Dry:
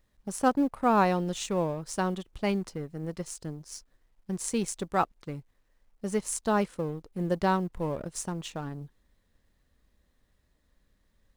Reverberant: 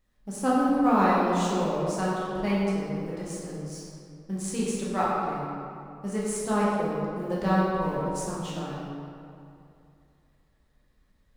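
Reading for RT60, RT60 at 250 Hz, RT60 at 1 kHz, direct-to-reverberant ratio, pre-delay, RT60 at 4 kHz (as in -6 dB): 2.6 s, 2.5 s, 2.6 s, -7.5 dB, 8 ms, 1.5 s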